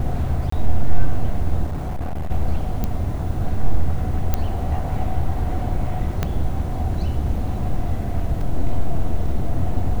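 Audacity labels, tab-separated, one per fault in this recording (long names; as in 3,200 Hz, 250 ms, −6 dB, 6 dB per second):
0.500000	0.520000	drop-out 24 ms
1.660000	2.310000	clipping −21 dBFS
2.840000	2.840000	click −10 dBFS
4.340000	4.340000	click −6 dBFS
6.230000	6.230000	click −8 dBFS
8.410000	8.410000	drop-out 3.1 ms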